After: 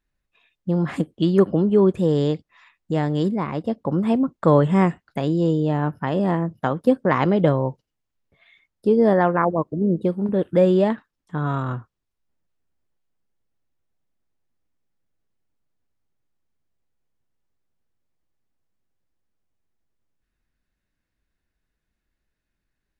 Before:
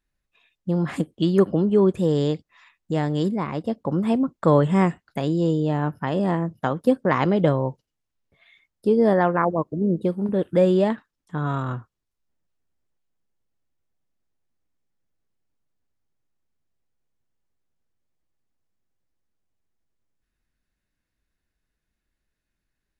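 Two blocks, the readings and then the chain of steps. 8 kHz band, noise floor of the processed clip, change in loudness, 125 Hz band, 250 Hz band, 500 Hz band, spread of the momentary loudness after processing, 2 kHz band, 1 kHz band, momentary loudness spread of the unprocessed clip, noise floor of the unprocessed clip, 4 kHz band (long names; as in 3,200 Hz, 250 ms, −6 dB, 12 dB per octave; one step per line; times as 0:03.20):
can't be measured, −81 dBFS, +1.5 dB, +1.5 dB, +1.5 dB, +1.5 dB, 10 LU, +1.0 dB, +1.5 dB, 10 LU, −82 dBFS, −0.5 dB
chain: high-shelf EQ 5,300 Hz −6.5 dB
level +1.5 dB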